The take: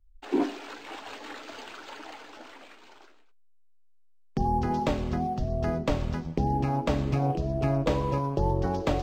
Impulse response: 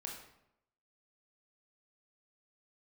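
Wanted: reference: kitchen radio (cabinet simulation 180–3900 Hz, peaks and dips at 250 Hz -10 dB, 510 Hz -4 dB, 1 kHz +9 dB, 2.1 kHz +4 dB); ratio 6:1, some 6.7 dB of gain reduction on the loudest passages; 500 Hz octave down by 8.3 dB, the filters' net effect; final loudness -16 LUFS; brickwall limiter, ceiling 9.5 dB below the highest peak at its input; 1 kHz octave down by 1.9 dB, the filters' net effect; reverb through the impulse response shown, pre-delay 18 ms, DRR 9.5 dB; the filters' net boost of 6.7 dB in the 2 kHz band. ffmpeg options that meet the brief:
-filter_complex "[0:a]equalizer=f=500:t=o:g=-8,equalizer=f=1000:t=o:g=-5.5,equalizer=f=2000:t=o:g=7.5,acompressor=threshold=0.0316:ratio=6,alimiter=level_in=1.41:limit=0.0631:level=0:latency=1,volume=0.708,asplit=2[s0][s1];[1:a]atrim=start_sample=2205,adelay=18[s2];[s1][s2]afir=irnorm=-1:irlink=0,volume=0.422[s3];[s0][s3]amix=inputs=2:normalize=0,highpass=180,equalizer=f=250:t=q:w=4:g=-10,equalizer=f=510:t=q:w=4:g=-4,equalizer=f=1000:t=q:w=4:g=9,equalizer=f=2100:t=q:w=4:g=4,lowpass=f=3900:w=0.5412,lowpass=f=3900:w=1.3066,volume=15"

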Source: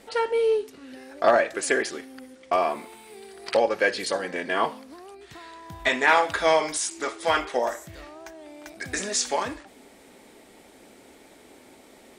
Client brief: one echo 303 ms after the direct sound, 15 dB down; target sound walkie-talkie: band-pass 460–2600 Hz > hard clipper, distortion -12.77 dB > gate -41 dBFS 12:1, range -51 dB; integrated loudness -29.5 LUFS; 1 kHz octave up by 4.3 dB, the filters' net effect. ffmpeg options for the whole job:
-af "highpass=460,lowpass=2600,equalizer=f=1000:t=o:g=6,aecho=1:1:303:0.178,asoftclip=type=hard:threshold=0.2,agate=range=0.00282:threshold=0.00891:ratio=12,volume=0.562"

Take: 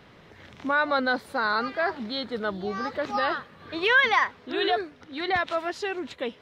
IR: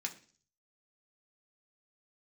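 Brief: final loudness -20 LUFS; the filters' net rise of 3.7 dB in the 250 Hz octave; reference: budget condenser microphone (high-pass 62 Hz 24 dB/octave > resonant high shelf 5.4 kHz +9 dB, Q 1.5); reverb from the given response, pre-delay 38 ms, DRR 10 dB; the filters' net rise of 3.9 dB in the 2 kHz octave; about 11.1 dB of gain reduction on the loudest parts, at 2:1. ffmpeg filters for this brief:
-filter_complex "[0:a]equalizer=f=250:t=o:g=4.5,equalizer=f=2000:t=o:g=6,acompressor=threshold=0.0224:ratio=2,asplit=2[s0][s1];[1:a]atrim=start_sample=2205,adelay=38[s2];[s1][s2]afir=irnorm=-1:irlink=0,volume=0.299[s3];[s0][s3]amix=inputs=2:normalize=0,highpass=f=62:w=0.5412,highpass=f=62:w=1.3066,highshelf=f=5400:t=q:w=1.5:g=9,volume=3.76"

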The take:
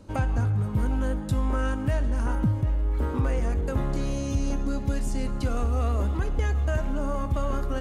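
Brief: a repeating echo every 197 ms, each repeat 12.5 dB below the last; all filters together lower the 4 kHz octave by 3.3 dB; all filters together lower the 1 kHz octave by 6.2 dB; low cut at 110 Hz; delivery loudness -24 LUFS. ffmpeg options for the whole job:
-af "highpass=110,equalizer=f=1000:t=o:g=-8,equalizer=f=4000:t=o:g=-4,aecho=1:1:197|394|591:0.237|0.0569|0.0137,volume=2.51"

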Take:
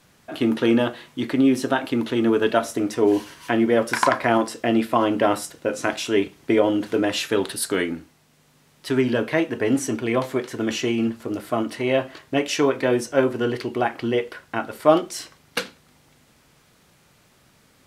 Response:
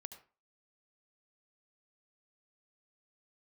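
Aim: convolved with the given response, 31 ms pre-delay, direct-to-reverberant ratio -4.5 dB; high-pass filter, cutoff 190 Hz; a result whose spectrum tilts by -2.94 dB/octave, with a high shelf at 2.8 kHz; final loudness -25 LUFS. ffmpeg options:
-filter_complex "[0:a]highpass=190,highshelf=f=2800:g=7,asplit=2[s0][s1];[1:a]atrim=start_sample=2205,adelay=31[s2];[s1][s2]afir=irnorm=-1:irlink=0,volume=2.99[s3];[s0][s3]amix=inputs=2:normalize=0,volume=0.376"

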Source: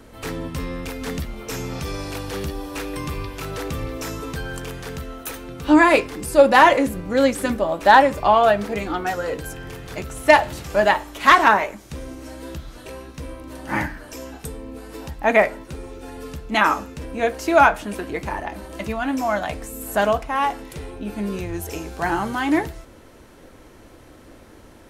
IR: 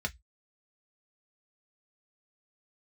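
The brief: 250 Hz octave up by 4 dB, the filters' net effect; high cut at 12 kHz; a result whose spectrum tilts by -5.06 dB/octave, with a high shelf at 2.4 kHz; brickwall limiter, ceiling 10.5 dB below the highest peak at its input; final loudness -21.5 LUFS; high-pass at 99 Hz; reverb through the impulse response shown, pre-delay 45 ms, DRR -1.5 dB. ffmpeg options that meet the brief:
-filter_complex "[0:a]highpass=99,lowpass=12000,equalizer=f=250:t=o:g=5,highshelf=f=2400:g=4.5,alimiter=limit=0.316:level=0:latency=1,asplit=2[s0][s1];[1:a]atrim=start_sample=2205,adelay=45[s2];[s1][s2]afir=irnorm=-1:irlink=0,volume=0.75[s3];[s0][s3]amix=inputs=2:normalize=0,volume=0.794"

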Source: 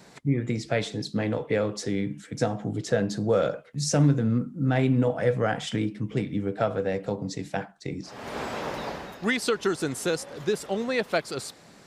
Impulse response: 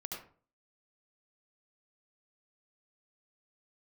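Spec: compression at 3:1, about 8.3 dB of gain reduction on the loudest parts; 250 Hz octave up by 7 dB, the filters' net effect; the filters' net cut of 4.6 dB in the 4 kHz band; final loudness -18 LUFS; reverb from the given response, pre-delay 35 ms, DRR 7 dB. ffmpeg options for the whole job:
-filter_complex "[0:a]equalizer=f=250:t=o:g=8.5,equalizer=f=4000:t=o:g=-6,acompressor=threshold=0.0708:ratio=3,asplit=2[s0][s1];[1:a]atrim=start_sample=2205,adelay=35[s2];[s1][s2]afir=irnorm=-1:irlink=0,volume=0.501[s3];[s0][s3]amix=inputs=2:normalize=0,volume=2.99"

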